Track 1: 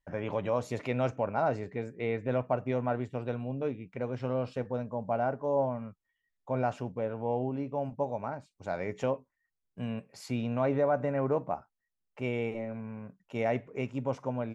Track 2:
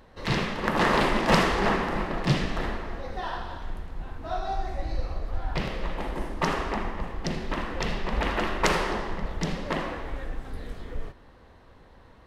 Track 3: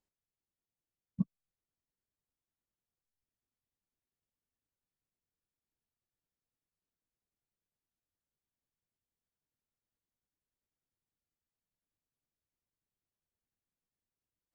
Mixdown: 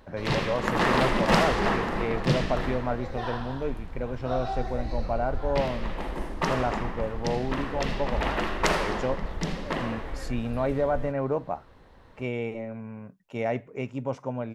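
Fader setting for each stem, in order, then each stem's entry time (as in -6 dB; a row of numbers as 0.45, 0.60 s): +1.5, -1.0, +0.5 dB; 0.00, 0.00, 0.00 s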